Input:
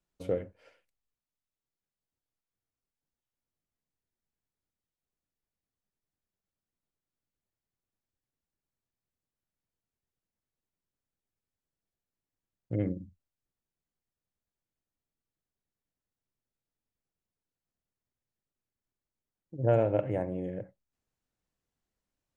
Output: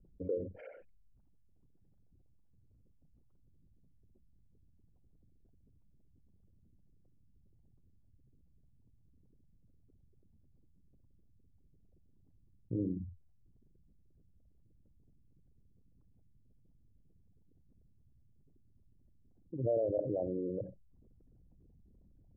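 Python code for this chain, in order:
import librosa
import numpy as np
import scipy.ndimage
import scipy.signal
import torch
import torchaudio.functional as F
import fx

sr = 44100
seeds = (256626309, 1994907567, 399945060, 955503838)

y = fx.envelope_sharpen(x, sr, power=3.0)
y = fx.env_lowpass_down(y, sr, base_hz=1400.0, full_db=-30.0)
y = fx.dynamic_eq(y, sr, hz=970.0, q=2.4, threshold_db=-47.0, ratio=4.0, max_db=5)
y = fx.env_lowpass(y, sr, base_hz=530.0, full_db=-31.5)
y = fx.env_flatten(y, sr, amount_pct=50)
y = F.gain(torch.from_numpy(y), -8.5).numpy()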